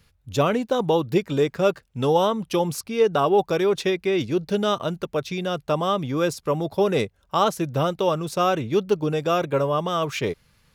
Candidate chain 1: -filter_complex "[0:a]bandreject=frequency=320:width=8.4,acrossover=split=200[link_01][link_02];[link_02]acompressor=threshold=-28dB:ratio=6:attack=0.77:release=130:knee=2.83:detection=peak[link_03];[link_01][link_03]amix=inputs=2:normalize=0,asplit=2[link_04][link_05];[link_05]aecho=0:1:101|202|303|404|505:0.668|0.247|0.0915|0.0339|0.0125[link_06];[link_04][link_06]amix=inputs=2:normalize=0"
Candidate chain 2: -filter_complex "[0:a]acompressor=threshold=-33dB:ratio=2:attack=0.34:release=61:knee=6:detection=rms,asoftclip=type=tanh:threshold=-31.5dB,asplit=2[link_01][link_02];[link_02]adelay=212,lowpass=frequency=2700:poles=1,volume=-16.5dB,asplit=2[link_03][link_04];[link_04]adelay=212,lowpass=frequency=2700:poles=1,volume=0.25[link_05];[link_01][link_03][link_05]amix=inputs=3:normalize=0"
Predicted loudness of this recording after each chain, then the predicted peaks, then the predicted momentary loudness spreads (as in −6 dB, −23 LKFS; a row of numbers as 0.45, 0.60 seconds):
−29.0, −36.5 LKFS; −15.5, −30.0 dBFS; 3, 3 LU